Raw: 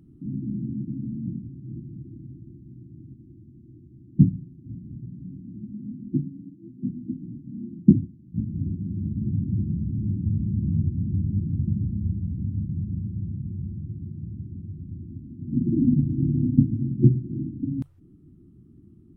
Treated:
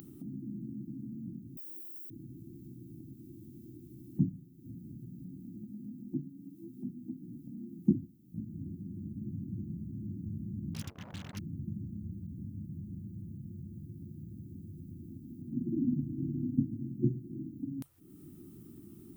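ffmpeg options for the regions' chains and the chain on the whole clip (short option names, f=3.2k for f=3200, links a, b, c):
-filter_complex "[0:a]asettb=1/sr,asplit=3[a][b][c];[a]atrim=end=1.574[d];[b]atrim=start=1.57:end=2.1,asetpts=PTS-STARTPTS,afade=t=in:d=0.004:c=qsin,afade=t=out:st=0.526:d=0.004:c=qsin,highpass=f=350:w=0.5412,highpass=f=350:w=1.3066,aemphasis=mode=production:type=riaa[e];[c]atrim=start=2.096[f];[d][e]acrossfade=d=0.004:c1=hsin:c2=qsin[g];[g][f]acrossfade=d=0.004:c1=qsin:c2=hsin,asettb=1/sr,asplit=3[h][i][j];[h]atrim=end=10.744[k];[i]atrim=start=10.74:end=11.39,asetpts=PTS-STARTPTS,afade=t=in:d=0.004:c=qsin,afade=t=out:st=0.646:d=0.004:c=qsin,agate=range=-33dB:threshold=-19dB:ratio=3:release=100:detection=peak,acrusher=bits=6:mix=0:aa=0.5[l];[j]atrim=start=11.386[m];[k][l]acrossfade=d=0.004:c1=hsin:c2=qsin[n];[n][m]acrossfade=d=0.004:c1=qsin:c2=hsin,aemphasis=mode=production:type=riaa,acompressor=mode=upward:threshold=-35dB:ratio=2.5,volume=-3.5dB"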